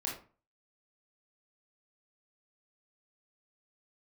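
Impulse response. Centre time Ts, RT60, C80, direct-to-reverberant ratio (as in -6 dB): 33 ms, 0.40 s, 11.5 dB, -3.0 dB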